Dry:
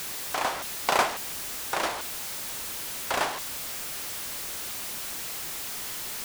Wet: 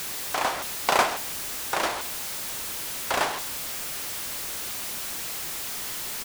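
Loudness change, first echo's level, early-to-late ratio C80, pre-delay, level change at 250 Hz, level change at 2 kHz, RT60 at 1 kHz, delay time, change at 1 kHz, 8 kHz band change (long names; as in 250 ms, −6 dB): +2.0 dB, −16.5 dB, no reverb audible, no reverb audible, +2.0 dB, +2.0 dB, no reverb audible, 127 ms, +2.0 dB, +2.0 dB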